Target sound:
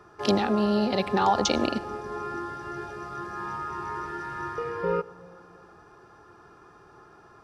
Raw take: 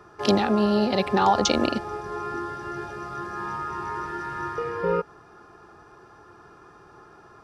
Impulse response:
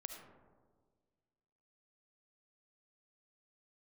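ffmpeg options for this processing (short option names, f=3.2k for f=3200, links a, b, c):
-filter_complex "[0:a]asplit=2[a][b];[1:a]atrim=start_sample=2205,asetrate=29988,aresample=44100[c];[b][c]afir=irnorm=-1:irlink=0,volume=-12dB[d];[a][d]amix=inputs=2:normalize=0,volume=-4dB"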